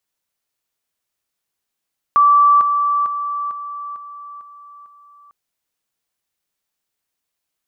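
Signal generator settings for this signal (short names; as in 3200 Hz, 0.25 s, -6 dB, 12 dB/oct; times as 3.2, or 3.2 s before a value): level ladder 1160 Hz -8 dBFS, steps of -6 dB, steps 7, 0.45 s 0.00 s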